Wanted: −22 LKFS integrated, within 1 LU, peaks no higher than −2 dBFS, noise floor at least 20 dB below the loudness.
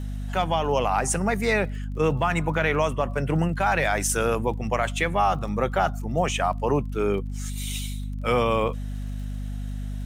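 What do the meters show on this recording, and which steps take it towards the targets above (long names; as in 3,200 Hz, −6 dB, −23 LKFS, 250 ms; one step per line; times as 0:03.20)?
crackle rate 29 per second; mains hum 50 Hz; hum harmonics up to 250 Hz; level of the hum −28 dBFS; integrated loudness −25.0 LKFS; sample peak −10.0 dBFS; target loudness −22.0 LKFS
→ click removal
hum removal 50 Hz, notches 5
level +3 dB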